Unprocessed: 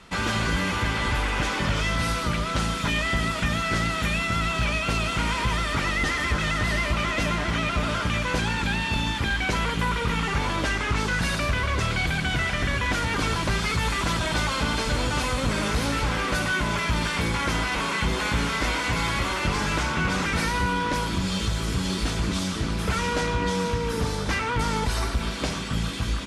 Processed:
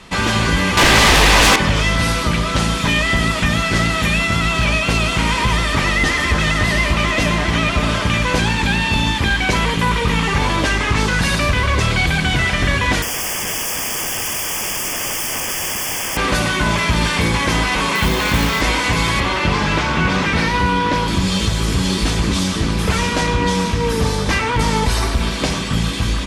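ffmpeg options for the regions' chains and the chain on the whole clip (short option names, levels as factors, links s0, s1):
-filter_complex "[0:a]asettb=1/sr,asplit=3[s0][s1][s2];[s0]atrim=end=0.774[s3];[s1]atrim=start=0.77:end=1.56,asetpts=PTS-STARTPTS,afade=t=in:d=0.004:c=qsin,afade=t=out:st=0.786:d=0.004:c=qsin,highshelf=f=8600:g=2,aeval=exprs='0.158*sin(PI/2*2.82*val(0)/0.158)':c=same[s4];[s2]atrim=start=1.556[s5];[s3][s4]acrossfade=d=0.004:c1=hsin:c2=qsin[s6];[s6][s5]acrossfade=d=0.004:c1=qsin:c2=hsin,asettb=1/sr,asplit=3[s7][s8][s9];[s7]atrim=end=13.024[s10];[s8]atrim=start=13.02:end=16.17,asetpts=PTS-STARTPTS,afade=t=in:d=0.004:c=qsin,afade=t=out:st=3.146:d=0.004:c=qsin,bandreject=f=50:t=h:w=6,bandreject=f=100:t=h:w=6,bandreject=f=150:t=h:w=6,bandreject=f=200:t=h:w=6,aeval=exprs='(mod(20*val(0)+1,2)-1)/20':c=same,asuperstop=centerf=4000:order=8:qfactor=3.1[s11];[s9]atrim=start=16.166[s12];[s10][s11]acrossfade=d=0.004:c1=hsin:c2=qsin[s13];[s13][s12]acrossfade=d=0.004:c1=qsin:c2=hsin,asettb=1/sr,asplit=3[s14][s15][s16];[s14]atrim=end=17.954[s17];[s15]atrim=start=17.95:end=18.61,asetpts=PTS-STARTPTS,afade=t=in:d=0.004:c=qsin,afade=t=out:st=0.656:d=0.004:c=qsin,lowpass=7100,acrusher=bits=3:mode=log:mix=0:aa=0.000001[s18];[s16]atrim=start=18.606[s19];[s17][s18]acrossfade=d=0.004:c1=hsin:c2=qsin[s20];[s20][s19]acrossfade=d=0.004:c1=qsin:c2=hsin,asettb=1/sr,asplit=3[s21][s22][s23];[s21]atrim=end=19.204[s24];[s22]atrim=start=19.2:end=21.08,asetpts=PTS-STARTPTS,afade=t=in:d=0.004:c=qsin,afade=t=out:st=1.876:d=0.004:c=qsin,acrossover=split=5300[s25][s26];[s26]acompressor=threshold=0.00251:ratio=4:attack=1:release=60[s27];[s25][s27]amix=inputs=2:normalize=0,highpass=46[s28];[s23]atrim=start=21.076[s29];[s24][s28]acrossfade=d=0.004:c1=hsin:c2=qsin[s30];[s30][s29]acrossfade=d=0.004:c1=qsin:c2=hsin,bandreject=f=1400:w=9.6,bandreject=f=59.82:t=h:w=4,bandreject=f=119.64:t=h:w=4,bandreject=f=179.46:t=h:w=4,bandreject=f=239.28:t=h:w=4,bandreject=f=299.1:t=h:w=4,bandreject=f=358.92:t=h:w=4,bandreject=f=418.74:t=h:w=4,bandreject=f=478.56:t=h:w=4,bandreject=f=538.38:t=h:w=4,bandreject=f=598.2:t=h:w=4,bandreject=f=658.02:t=h:w=4,bandreject=f=717.84:t=h:w=4,bandreject=f=777.66:t=h:w=4,bandreject=f=837.48:t=h:w=4,bandreject=f=897.3:t=h:w=4,bandreject=f=957.12:t=h:w=4,bandreject=f=1016.94:t=h:w=4,bandreject=f=1076.76:t=h:w=4,bandreject=f=1136.58:t=h:w=4,bandreject=f=1196.4:t=h:w=4,bandreject=f=1256.22:t=h:w=4,bandreject=f=1316.04:t=h:w=4,bandreject=f=1375.86:t=h:w=4,bandreject=f=1435.68:t=h:w=4,bandreject=f=1495.5:t=h:w=4,bandreject=f=1555.32:t=h:w=4,bandreject=f=1615.14:t=h:w=4,bandreject=f=1674.96:t=h:w=4,bandreject=f=1734.78:t=h:w=4,bandreject=f=1794.6:t=h:w=4,bandreject=f=1854.42:t=h:w=4,bandreject=f=1914.24:t=h:w=4,bandreject=f=1974.06:t=h:w=4,bandreject=f=2033.88:t=h:w=4,bandreject=f=2093.7:t=h:w=4,bandreject=f=2153.52:t=h:w=4,bandreject=f=2213.34:t=h:w=4,bandreject=f=2273.16:t=h:w=4,bandreject=f=2332.98:t=h:w=4,volume=2.82"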